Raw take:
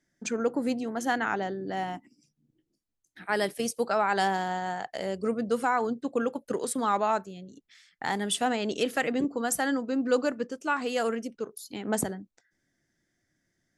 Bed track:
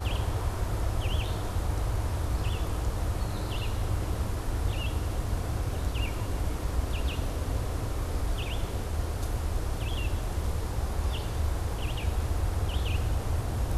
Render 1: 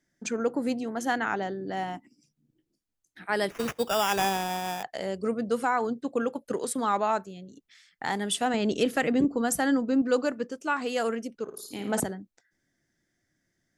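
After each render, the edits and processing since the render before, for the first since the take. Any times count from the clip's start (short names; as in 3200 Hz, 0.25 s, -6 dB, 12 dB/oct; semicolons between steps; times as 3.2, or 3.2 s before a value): 3.5–4.83 sample-rate reducer 4200 Hz; 8.54–10.02 low shelf 260 Hz +9.5 dB; 11.43–12 flutter echo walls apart 9.3 m, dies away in 0.56 s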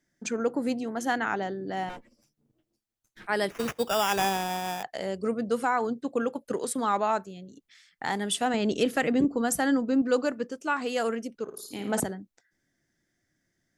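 1.89–3.27 minimum comb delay 8.8 ms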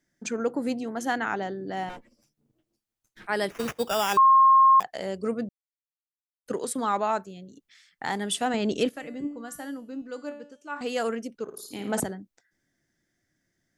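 4.17–4.8 bleep 1070 Hz -13 dBFS; 5.49–6.46 mute; 8.89–10.81 resonator 290 Hz, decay 0.6 s, mix 80%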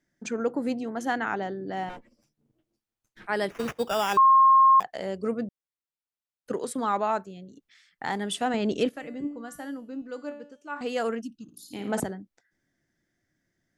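11.21–11.73 spectral gain 330–2500 Hz -30 dB; high shelf 4400 Hz -6.5 dB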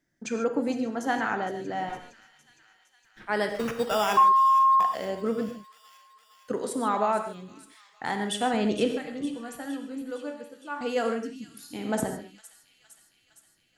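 thin delay 0.461 s, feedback 66%, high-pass 3000 Hz, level -12 dB; non-linear reverb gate 0.17 s flat, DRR 5.5 dB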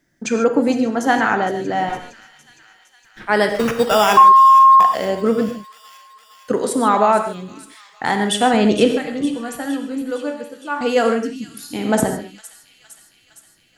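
gain +11 dB; limiter -1 dBFS, peak gain reduction 1.5 dB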